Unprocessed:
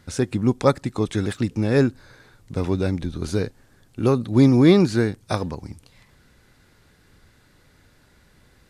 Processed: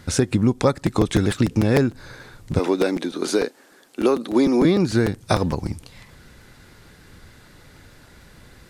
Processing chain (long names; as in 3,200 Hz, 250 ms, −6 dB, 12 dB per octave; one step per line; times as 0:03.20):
0:02.59–0:04.65: high-pass filter 280 Hz 24 dB per octave
downward compressor 6 to 1, threshold −23 dBFS, peak gain reduction 13.5 dB
regular buffer underruns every 0.15 s, samples 256, repeat, from 0:00.86
level +8.5 dB